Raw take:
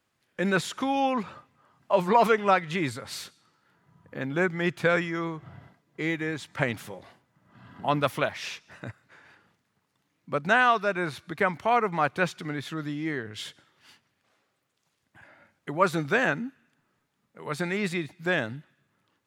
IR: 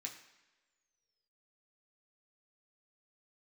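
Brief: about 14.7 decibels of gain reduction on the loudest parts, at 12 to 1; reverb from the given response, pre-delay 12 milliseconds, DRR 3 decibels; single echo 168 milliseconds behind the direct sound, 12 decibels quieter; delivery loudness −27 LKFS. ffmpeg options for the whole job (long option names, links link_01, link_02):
-filter_complex "[0:a]acompressor=threshold=-31dB:ratio=12,aecho=1:1:168:0.251,asplit=2[link_01][link_02];[1:a]atrim=start_sample=2205,adelay=12[link_03];[link_02][link_03]afir=irnorm=-1:irlink=0,volume=0dB[link_04];[link_01][link_04]amix=inputs=2:normalize=0,volume=8.5dB"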